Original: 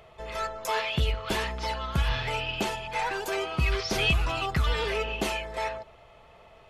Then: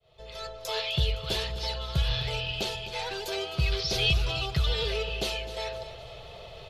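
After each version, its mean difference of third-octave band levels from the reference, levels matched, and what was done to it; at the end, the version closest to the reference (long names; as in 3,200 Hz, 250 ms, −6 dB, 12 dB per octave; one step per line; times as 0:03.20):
5.0 dB: fade in at the beginning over 0.77 s
octave-band graphic EQ 125/250/500/1,000/2,000/4,000/8,000 Hz +6/−12/+5/−8/−7/+11/−4 dB
reversed playback
upward compression, threshold −31 dBFS
reversed playback
repeating echo 257 ms, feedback 48%, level −14 dB
level −1.5 dB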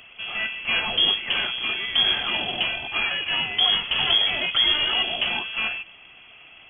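12.5 dB: stylus tracing distortion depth 0.42 ms
parametric band 510 Hz +5 dB 0.87 octaves
log-companded quantiser 4 bits
voice inversion scrambler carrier 3,300 Hz
level +2.5 dB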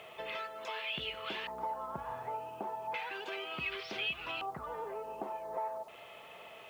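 8.5 dB: high-pass filter 220 Hz 12 dB per octave
downward compressor 8 to 1, threshold −41 dBFS, peak gain reduction 19.5 dB
auto-filter low-pass square 0.34 Hz 920–3,000 Hz
bit reduction 11 bits
level +1 dB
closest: first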